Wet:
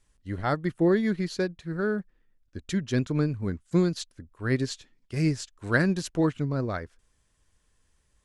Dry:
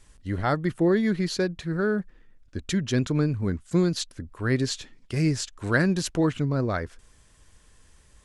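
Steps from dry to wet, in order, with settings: upward expander 1.5:1, over -43 dBFS

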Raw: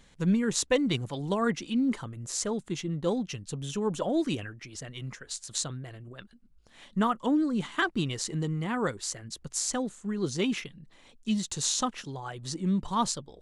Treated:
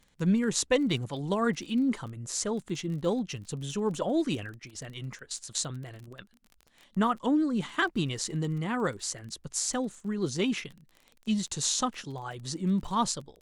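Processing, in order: gate -45 dBFS, range -8 dB; crackle 26/s -39 dBFS; Opus 96 kbps 48000 Hz

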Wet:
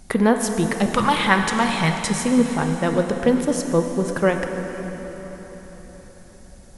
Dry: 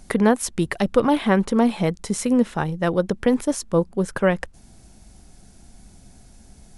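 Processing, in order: 0.86–2.1 graphic EQ 125/250/500/1000/2000/4000/8000 Hz +10/-10/-9/+7/+7/+6/+9 dB; plate-style reverb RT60 4.7 s, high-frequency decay 0.85×, DRR 4 dB

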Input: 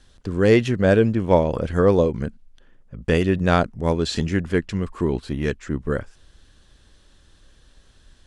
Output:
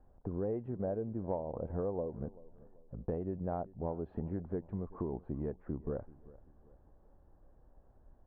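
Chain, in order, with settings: ladder low-pass 910 Hz, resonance 50%; compressor 6:1, threshold -35 dBFS, peak gain reduction 17.5 dB; on a send: feedback echo 0.386 s, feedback 38%, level -20.5 dB; on the sum: gain +1 dB

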